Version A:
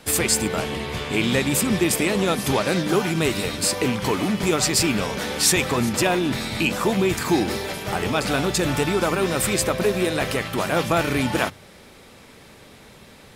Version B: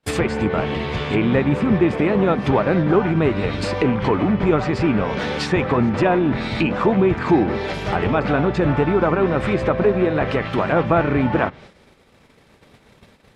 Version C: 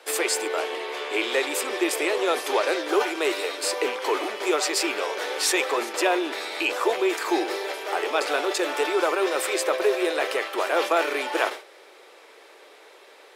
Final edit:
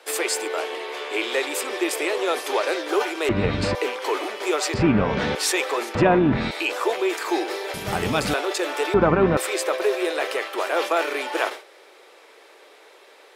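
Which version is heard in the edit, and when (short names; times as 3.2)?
C
3.29–3.75 from B
4.74–5.35 from B
5.95–6.51 from B
7.74–8.34 from A
8.94–9.37 from B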